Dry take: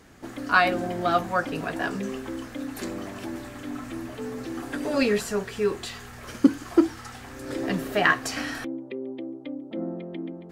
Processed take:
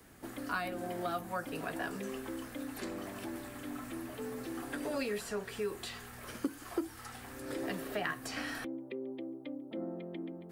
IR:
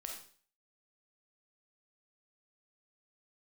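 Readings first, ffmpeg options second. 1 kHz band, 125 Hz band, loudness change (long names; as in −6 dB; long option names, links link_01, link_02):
−13.0 dB, −11.0 dB, −12.5 dB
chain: -filter_complex "[0:a]aexciter=amount=4.1:drive=2.7:freq=8700,acrossover=split=140|300|6700[link_01][link_02][link_03][link_04];[link_01]acompressor=threshold=-49dB:ratio=4[link_05];[link_02]acompressor=threshold=-41dB:ratio=4[link_06];[link_03]acompressor=threshold=-29dB:ratio=4[link_07];[link_04]acompressor=threshold=-49dB:ratio=4[link_08];[link_05][link_06][link_07][link_08]amix=inputs=4:normalize=0,volume=-6dB"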